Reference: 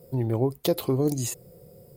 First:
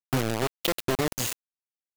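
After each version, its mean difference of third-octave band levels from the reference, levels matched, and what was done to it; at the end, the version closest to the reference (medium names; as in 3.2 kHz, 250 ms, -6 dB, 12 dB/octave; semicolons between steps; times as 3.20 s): 12.0 dB: peaking EQ 2.6 kHz +12 dB 1.1 oct; compression 4:1, threshold -32 dBFS, peak gain reduction 12.5 dB; bit crusher 5-bit; trim +5.5 dB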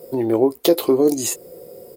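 3.5 dB: resonant low shelf 210 Hz -13.5 dB, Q 1.5; in parallel at -2 dB: compression, threshold -34 dBFS, peak gain reduction 16.5 dB; on the sum: doubling 18 ms -11 dB; trim +5.5 dB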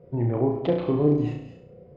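8.5 dB: low-pass 2.5 kHz 24 dB/octave; flutter echo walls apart 5.8 m, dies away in 0.55 s; gated-style reverb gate 260 ms rising, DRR 11 dB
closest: second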